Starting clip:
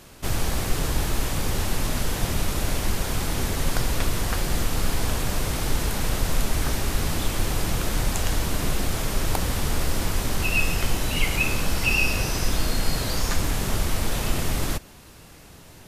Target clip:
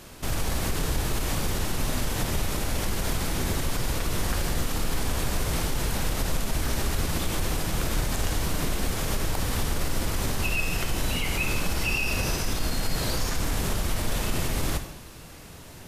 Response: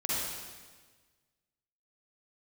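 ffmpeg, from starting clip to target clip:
-filter_complex "[0:a]alimiter=limit=-19dB:level=0:latency=1:release=83,asplit=2[a][b];[1:a]atrim=start_sample=2205,asetrate=74970,aresample=44100[c];[b][c]afir=irnorm=-1:irlink=0,volume=-8.5dB[d];[a][d]amix=inputs=2:normalize=0"

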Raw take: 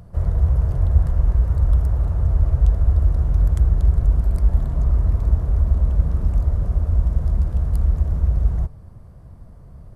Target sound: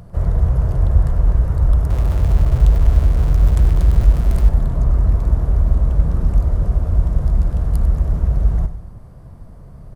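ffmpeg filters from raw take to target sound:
-filter_complex "[0:a]asettb=1/sr,asplit=3[a][b][c];[a]atrim=end=1.904[d];[b]atrim=start=1.9:end=4.49,asetpts=PTS-STARTPTS,afade=t=in:d=0.004:c=qsin,afade=t=out:st=2.586:d=0.004:c=qsin,aeval=exprs='val(0)+0.5*0.0376*sgn(val(0))':c=same[e];[c]atrim=start=4.486[f];[d][e]acrossfade=d=0.004:c1=hsin:c2=qsin[g];[g][f]acrossfade=d=0.004:c1=qsin:c2=hsin,equalizer=f=73:w=2.1:g=-5.5,aecho=1:1:97|194|291|388|485:0.224|0.105|0.0495|0.0232|0.0109,volume=5dB"

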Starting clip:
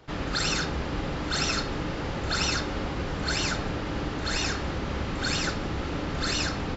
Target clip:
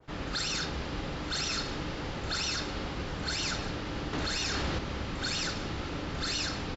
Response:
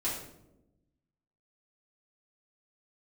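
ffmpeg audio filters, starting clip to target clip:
-filter_complex "[0:a]adynamicequalizer=threshold=0.00708:dfrequency=4400:dqfactor=0.73:tfrequency=4400:tqfactor=0.73:attack=5:release=100:ratio=0.375:range=3:mode=boostabove:tftype=bell,asettb=1/sr,asplit=3[a][b][c];[a]atrim=end=4.134[d];[b]atrim=start=4.13:end=4.79,asetpts=PTS-STARTPTS,afade=t=in:d=0.004:c=qsin,afade=t=out:st=0.656:d=0.004:c=qsin,acontrast=64[e];[c]atrim=start=4.786[f];[d][e]acrossfade=d=0.004:c1=hsin:c2=qsin[g];[g][f]acrossfade=d=0.004:c1=qsin:c2=hsin,alimiter=limit=-18dB:level=0:latency=1:release=11,aecho=1:1:1109:0.178,volume=-5.5dB"

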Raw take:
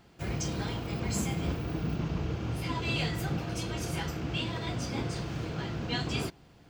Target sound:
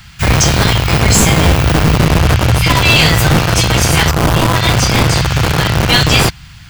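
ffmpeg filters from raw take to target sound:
-filter_complex "[0:a]asettb=1/sr,asplit=3[a][b][c];[a]atrim=end=4.114[d];[b]atrim=start=4.11:end=4.56,asetpts=PTS-STARTPTS,afade=t=in:d=0.004:c=qsin,afade=t=out:st=0.446:d=0.004:c=qsin,highshelf=f=1.5k:t=q:w=3:g=-10.5[e];[c]atrim=start=4.556[f];[d][e]acrossfade=d=0.004:c1=hsin:c2=qsin[g];[g][f]acrossfade=d=0.004:c1=qsin:c2=hsin,acrossover=split=150|1200[h][i][j];[i]acrusher=bits=3:dc=4:mix=0:aa=0.000001[k];[h][k][j]amix=inputs=3:normalize=0,apsyclip=29dB,volume=-3dB"

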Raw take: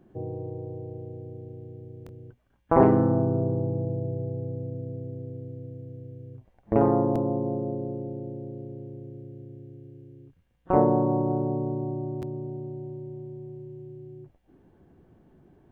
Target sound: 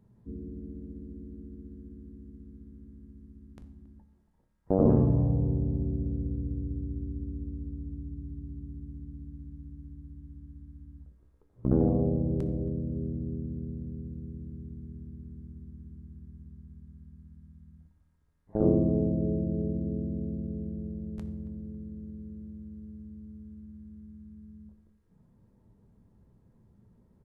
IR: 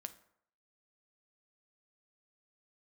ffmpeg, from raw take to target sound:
-filter_complex "[0:a]asplit=2[a][b];[b]adelay=159,lowpass=f=2.1k:p=1,volume=-17.5dB,asplit=2[c][d];[d]adelay=159,lowpass=f=2.1k:p=1,volume=0.44,asplit=2[e][f];[f]adelay=159,lowpass=f=2.1k:p=1,volume=0.44,asplit=2[g][h];[h]adelay=159,lowpass=f=2.1k:p=1,volume=0.44[i];[a][c][e][g][i]amix=inputs=5:normalize=0[j];[1:a]atrim=start_sample=2205[k];[j][k]afir=irnorm=-1:irlink=0,asetrate=25442,aresample=44100"

